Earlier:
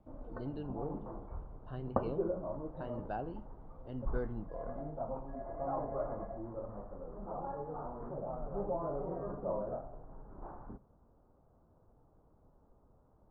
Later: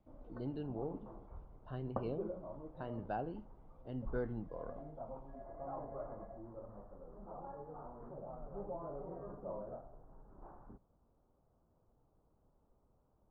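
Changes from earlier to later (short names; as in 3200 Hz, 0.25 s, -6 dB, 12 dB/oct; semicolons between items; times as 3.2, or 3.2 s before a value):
background -6.0 dB; reverb: off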